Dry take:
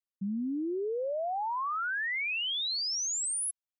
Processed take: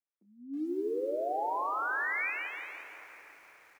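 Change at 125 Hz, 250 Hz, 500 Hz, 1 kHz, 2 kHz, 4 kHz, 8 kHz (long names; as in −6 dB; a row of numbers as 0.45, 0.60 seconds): can't be measured, −4.0 dB, 0.0 dB, 0.0 dB, −0.5 dB, −25.5 dB, below −30 dB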